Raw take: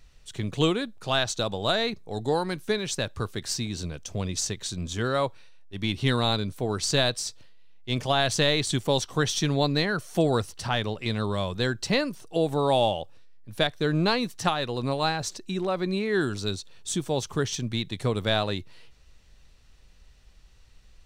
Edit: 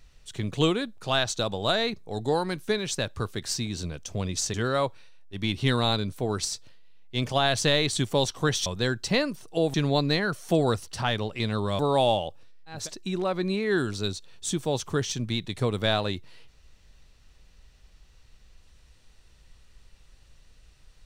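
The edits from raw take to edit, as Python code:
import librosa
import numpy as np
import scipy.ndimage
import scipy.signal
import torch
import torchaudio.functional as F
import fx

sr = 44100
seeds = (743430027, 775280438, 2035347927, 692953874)

y = fx.edit(x, sr, fx.cut(start_s=4.54, length_s=0.4),
    fx.cut(start_s=6.85, length_s=0.34),
    fx.move(start_s=11.45, length_s=1.08, to_s=9.4),
    fx.cut(start_s=13.52, length_s=1.69, crossfade_s=0.24), tone=tone)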